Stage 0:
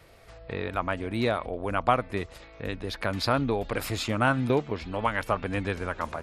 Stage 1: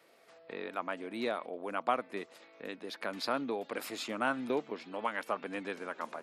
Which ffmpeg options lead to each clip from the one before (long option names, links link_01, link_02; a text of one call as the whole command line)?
ffmpeg -i in.wav -af "highpass=frequency=220:width=0.5412,highpass=frequency=220:width=1.3066,volume=-7.5dB" out.wav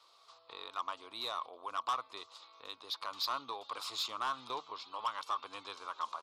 ffmpeg -i in.wav -af "firequalizer=gain_entry='entry(110,0);entry(170,-21);entry(350,-11);entry(650,-6);entry(1100,14);entry(1700,-11);entry(3700,13);entry(12000,-7)':delay=0.05:min_phase=1,asoftclip=type=tanh:threshold=-25dB,volume=-3.5dB" out.wav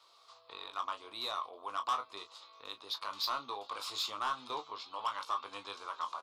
ffmpeg -i in.wav -af "aecho=1:1:20|36:0.422|0.224" out.wav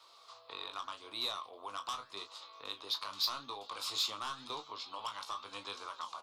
ffmpeg -i in.wav -filter_complex "[0:a]acrossover=split=240|3000[link_01][link_02][link_03];[link_02]acompressor=threshold=-48dB:ratio=2.5[link_04];[link_01][link_04][link_03]amix=inputs=3:normalize=0,flanger=delay=3.2:depth=8.8:regen=89:speed=0.85:shape=sinusoidal,volume=8dB" out.wav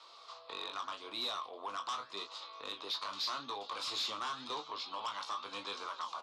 ffmpeg -i in.wav -af "asoftclip=type=tanh:threshold=-36.5dB,highpass=150,lowpass=6000,volume=4.5dB" out.wav